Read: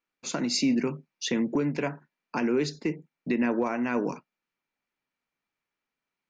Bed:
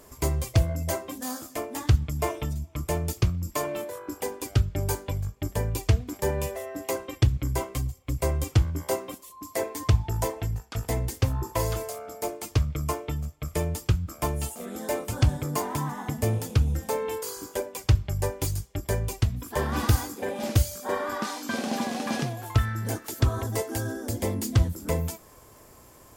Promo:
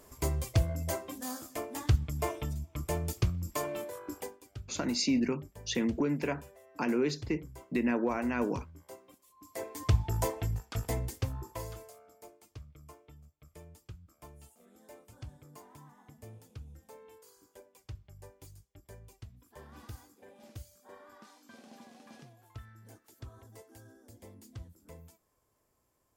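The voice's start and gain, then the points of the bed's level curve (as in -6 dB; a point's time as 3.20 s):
4.45 s, -3.5 dB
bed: 4.18 s -5.5 dB
4.43 s -22 dB
9.03 s -22 dB
9.99 s -3.5 dB
10.76 s -3.5 dB
12.47 s -24.5 dB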